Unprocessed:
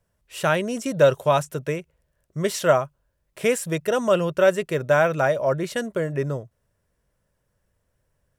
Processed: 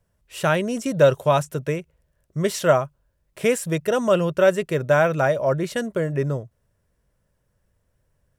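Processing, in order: low shelf 280 Hz +4 dB

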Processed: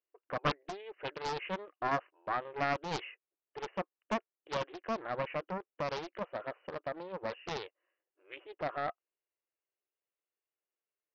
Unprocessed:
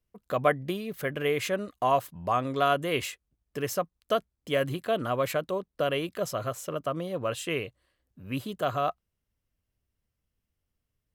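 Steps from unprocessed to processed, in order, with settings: brick-wall FIR band-pass 310–3000 Hz; Doppler distortion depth 0.88 ms; gain -7.5 dB

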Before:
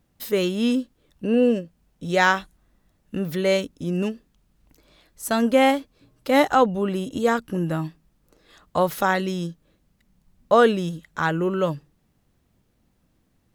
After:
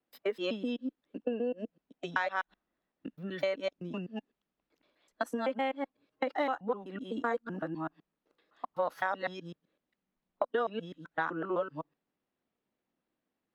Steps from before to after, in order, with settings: local time reversal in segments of 0.127 s; spectral noise reduction 10 dB; compressor 12:1, threshold -24 dBFS, peak gain reduction 13.5 dB; added harmonics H 6 -36 dB, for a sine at -10.5 dBFS; three-band isolator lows -22 dB, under 230 Hz, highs -19 dB, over 4300 Hz; gain -3 dB

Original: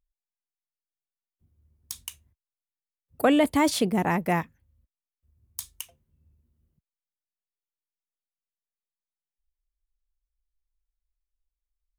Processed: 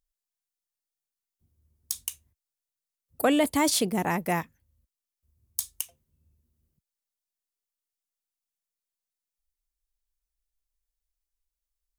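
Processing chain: tone controls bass -2 dB, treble +8 dB; gain -2 dB

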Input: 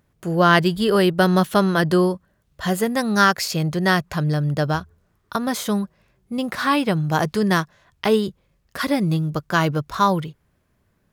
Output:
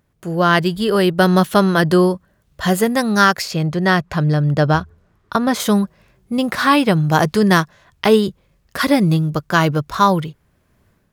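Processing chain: AGC gain up to 9 dB; 3.42–5.6 LPF 3900 Hz 6 dB/oct

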